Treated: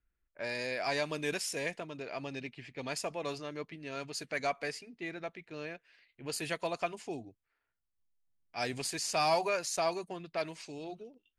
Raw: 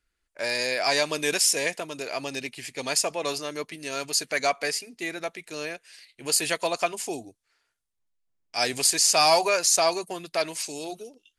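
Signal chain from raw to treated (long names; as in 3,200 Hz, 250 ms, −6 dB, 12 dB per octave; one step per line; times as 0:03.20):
low-pass that shuts in the quiet parts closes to 2,500 Hz, open at −21.5 dBFS
bass and treble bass +8 dB, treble −9 dB
level −8.5 dB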